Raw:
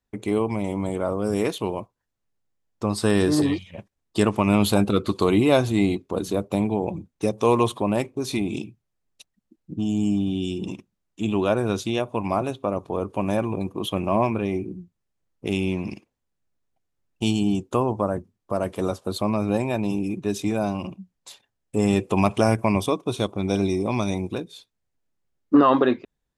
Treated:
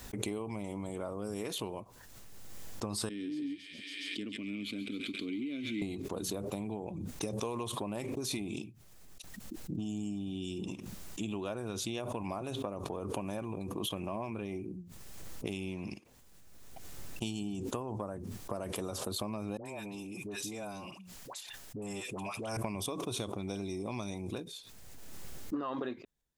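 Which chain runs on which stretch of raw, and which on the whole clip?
3.09–5.82 G.711 law mismatch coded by A + vowel filter i + thin delay 0.138 s, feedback 74%, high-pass 1800 Hz, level -6 dB
19.57–22.57 low shelf 420 Hz -8.5 dB + dispersion highs, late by 85 ms, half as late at 860 Hz + compressor 2:1, threshold -36 dBFS
whole clip: compressor 6:1, threshold -28 dBFS; high shelf 4300 Hz +7.5 dB; backwards sustainer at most 25 dB/s; gain -7 dB

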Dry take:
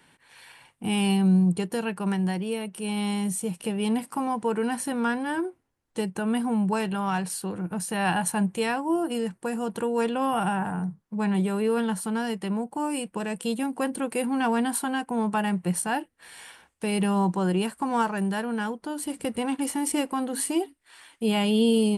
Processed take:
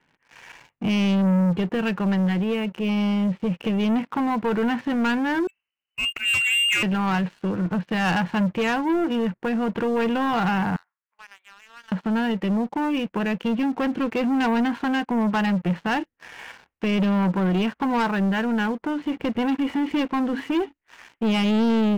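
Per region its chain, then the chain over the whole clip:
5.47–6.83 inverted band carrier 3000 Hz + auto swell 0.11 s
10.76–11.92 HPF 1300 Hz 24 dB/oct + compressor 2.5:1, threshold -54 dBFS
whole clip: steep low-pass 2900 Hz; dynamic EQ 640 Hz, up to -5 dB, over -38 dBFS, Q 1.1; sample leveller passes 3; gain -2 dB

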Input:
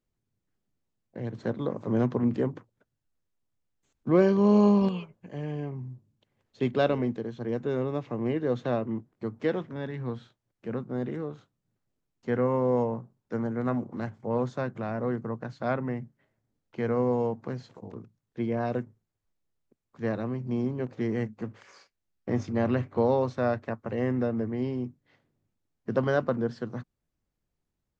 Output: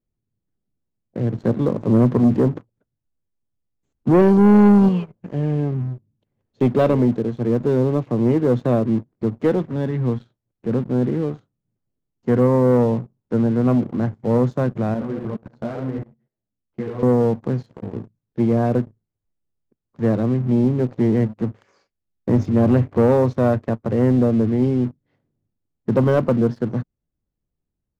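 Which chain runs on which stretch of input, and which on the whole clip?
14.94–17.03 darkening echo 76 ms, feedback 27%, low-pass 1900 Hz, level -4 dB + level quantiser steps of 17 dB + ensemble effect
whole clip: tilt shelf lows +6.5 dB, about 760 Hz; sample leveller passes 2

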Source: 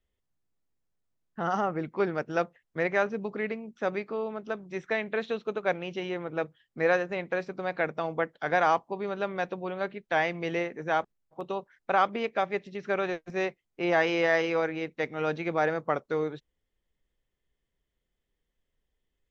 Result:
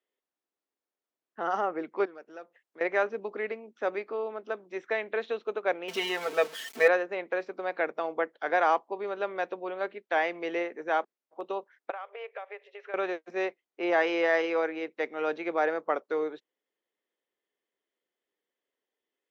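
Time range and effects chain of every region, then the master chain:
2.05–2.81 high shelf 4900 Hz +6 dB + compressor 2:1, threshold -51 dBFS + core saturation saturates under 510 Hz
5.88–6.88 zero-crossing step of -40 dBFS + high shelf 2200 Hz +11.5 dB + comb 4.5 ms, depth 95%
11.9–12.94 compressor 20:1, threshold -34 dBFS + brick-wall FIR high-pass 400 Hz + resonant high shelf 3700 Hz -8.5 dB, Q 1.5
whole clip: HPF 300 Hz 24 dB/oct; high shelf 4900 Hz -9.5 dB

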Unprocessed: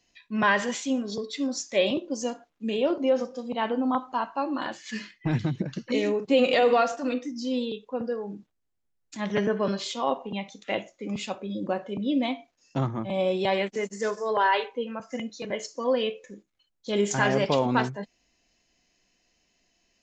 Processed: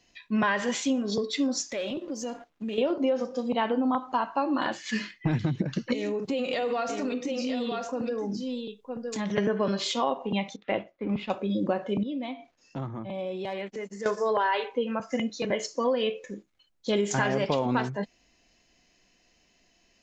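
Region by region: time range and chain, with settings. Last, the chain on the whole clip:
1.72–2.78 sample leveller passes 1 + compressor 4:1, threshold -38 dBFS
5.93–9.38 tone controls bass +3 dB, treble +5 dB + echo 0.958 s -11.5 dB + compressor 4:1, threshold -33 dBFS
10.56–11.3 G.711 law mismatch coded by A + air absorption 370 m
12.03–14.06 high shelf 6800 Hz -8.5 dB + compressor 2:1, threshold -47 dBFS + hard clip -31 dBFS
whole clip: high shelf 7200 Hz -6.5 dB; compressor 6:1, threshold -28 dBFS; gain +5.5 dB

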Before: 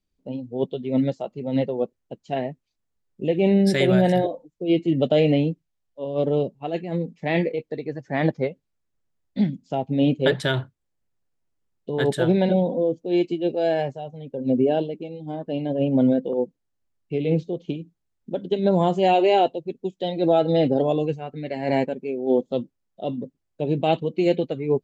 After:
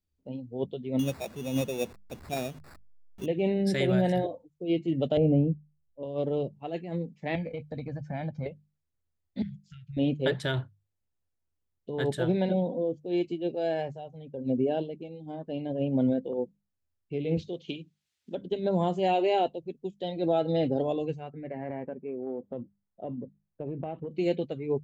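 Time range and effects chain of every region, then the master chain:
0.99–3.26 zero-crossing step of -37.5 dBFS + sample-rate reducer 3100 Hz
5.17–6.03 running mean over 24 samples + tilt -2 dB/oct
7.35–8.46 low shelf 470 Hz +7 dB + comb 1.3 ms, depth 83% + compressor 12:1, threshold -23 dBFS
9.42–9.97 compressor 5:1, threshold -27 dBFS + brick-wall FIR band-stop 180–1300 Hz
17.37–18.35 weighting filter D + mismatched tape noise reduction encoder only
21.3–24.11 LPF 2000 Hz 24 dB/oct + compressor 10:1, threshold -23 dBFS
whole clip: bell 80 Hz +14 dB 0.7 oct; notches 50/100/150/200 Hz; gain -7.5 dB

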